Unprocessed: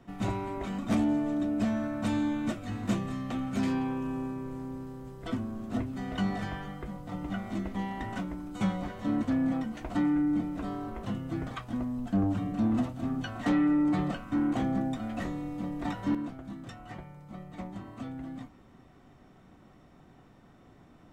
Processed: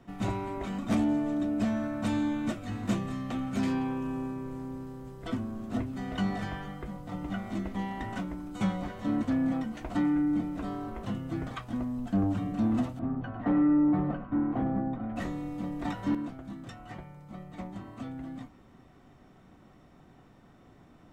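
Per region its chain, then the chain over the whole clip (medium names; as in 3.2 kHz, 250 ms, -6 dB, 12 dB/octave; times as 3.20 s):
12.99–15.16 s: low-pass 1.3 kHz + delay 101 ms -11.5 dB
whole clip: none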